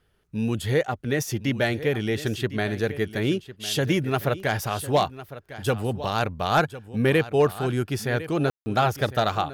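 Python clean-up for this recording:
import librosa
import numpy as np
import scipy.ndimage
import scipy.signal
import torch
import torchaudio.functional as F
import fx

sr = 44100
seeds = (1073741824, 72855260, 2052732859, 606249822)

y = fx.fix_declip(x, sr, threshold_db=-11.5)
y = fx.fix_ambience(y, sr, seeds[0], print_start_s=0.0, print_end_s=0.5, start_s=8.5, end_s=8.66)
y = fx.fix_echo_inverse(y, sr, delay_ms=1054, level_db=-15.0)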